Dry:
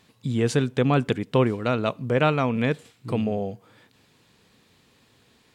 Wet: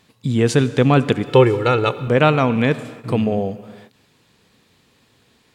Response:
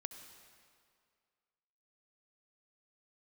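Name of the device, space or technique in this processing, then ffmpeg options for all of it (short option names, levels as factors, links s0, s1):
keyed gated reverb: -filter_complex "[0:a]asplit=3[s0][s1][s2];[1:a]atrim=start_sample=2205[s3];[s1][s3]afir=irnorm=-1:irlink=0[s4];[s2]apad=whole_len=244556[s5];[s4][s5]sidechaingate=range=0.0224:threshold=0.00178:ratio=16:detection=peak,volume=1[s6];[s0][s6]amix=inputs=2:normalize=0,asettb=1/sr,asplit=3[s7][s8][s9];[s7]atrim=end=1.264[s10];[s8]atrim=start=1.26:end=2.08,asetpts=PTS-STARTPTS,afade=t=in:d=0.004:c=qsin,afade=t=out:st=0.816:d=0.004:c=qsin,aecho=1:1:2.3:0.75,atrim=end_sample=36162[s11];[s9]atrim=start=2.076[s12];[s10][s11]acrossfade=d=0.004:c1=hsin:c2=qsin[s13];[s13][s12]acrossfade=d=0.004:c1=qsin:c2=hsin,volume=1.26"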